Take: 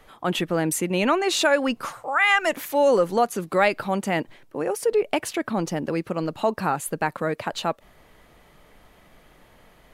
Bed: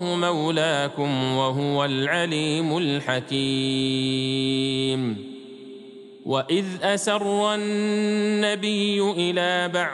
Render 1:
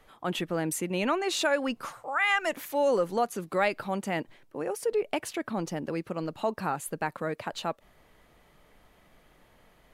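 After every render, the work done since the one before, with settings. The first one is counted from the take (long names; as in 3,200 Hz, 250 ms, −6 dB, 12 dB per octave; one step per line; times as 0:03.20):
level −6.5 dB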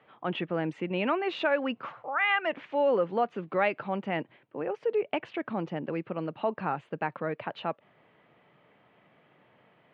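elliptic band-pass filter 120–2,900 Hz, stop band 60 dB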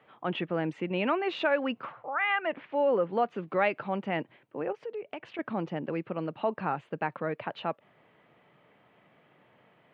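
0:01.85–0:03.13: high-frequency loss of the air 230 metres
0:04.72–0:05.39: downward compressor 2 to 1, threshold −42 dBFS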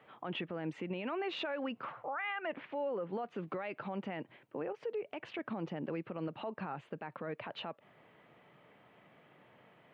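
downward compressor 2 to 1, threshold −33 dBFS, peak gain reduction 7 dB
brickwall limiter −30 dBFS, peak gain reduction 11 dB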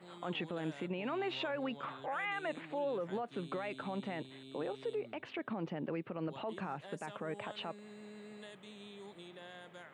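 mix in bed −29.5 dB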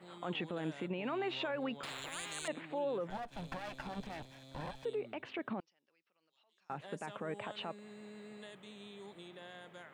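0:01.83–0:02.48: every bin compressed towards the loudest bin 10 to 1
0:03.10–0:04.85: lower of the sound and its delayed copy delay 1.2 ms
0:05.60–0:06.70: resonant band-pass 5,400 Hz, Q 9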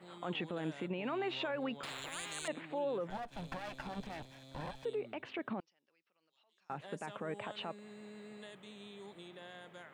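no processing that can be heard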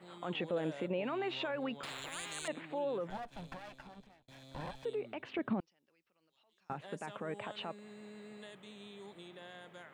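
0:00.40–0:01.04: parametric band 540 Hz +10 dB 0.51 octaves
0:03.09–0:04.28: fade out
0:05.33–0:06.73: low-shelf EQ 330 Hz +9.5 dB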